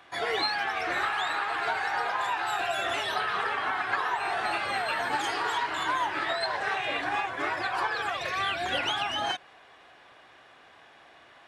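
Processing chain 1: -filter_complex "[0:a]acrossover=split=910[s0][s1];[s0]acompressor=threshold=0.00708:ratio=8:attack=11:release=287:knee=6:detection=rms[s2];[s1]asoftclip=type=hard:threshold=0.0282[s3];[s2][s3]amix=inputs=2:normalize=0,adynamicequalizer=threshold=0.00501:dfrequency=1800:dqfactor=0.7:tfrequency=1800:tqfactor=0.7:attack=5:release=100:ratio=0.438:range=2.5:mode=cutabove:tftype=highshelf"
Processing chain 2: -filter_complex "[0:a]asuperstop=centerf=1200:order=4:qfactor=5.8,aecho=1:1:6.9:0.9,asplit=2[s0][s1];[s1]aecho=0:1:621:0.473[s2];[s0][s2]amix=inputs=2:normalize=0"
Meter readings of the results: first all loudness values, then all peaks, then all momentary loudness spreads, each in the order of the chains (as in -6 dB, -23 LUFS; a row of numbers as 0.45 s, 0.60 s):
-34.0 LUFS, -26.0 LUFS; -26.5 dBFS, -12.0 dBFS; 20 LU, 3 LU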